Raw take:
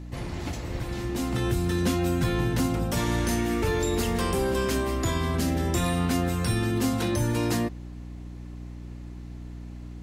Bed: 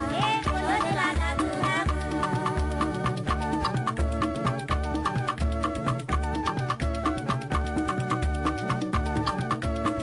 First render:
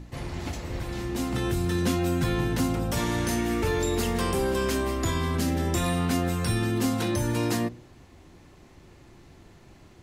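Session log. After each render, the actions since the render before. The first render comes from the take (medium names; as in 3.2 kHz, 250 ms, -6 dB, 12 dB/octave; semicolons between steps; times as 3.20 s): de-hum 60 Hz, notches 11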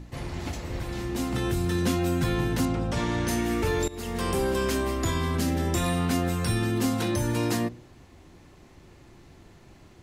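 2.65–3.28 s: distance through air 78 m; 3.88–4.33 s: fade in, from -19 dB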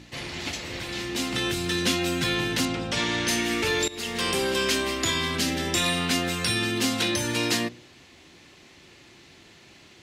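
frequency weighting D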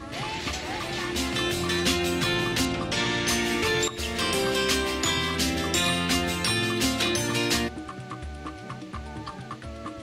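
add bed -10 dB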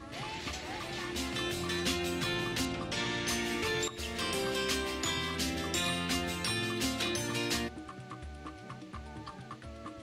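trim -8 dB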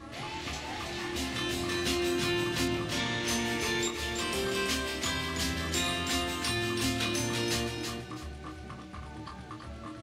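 doubling 26 ms -5 dB; feedback delay 328 ms, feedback 25%, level -6 dB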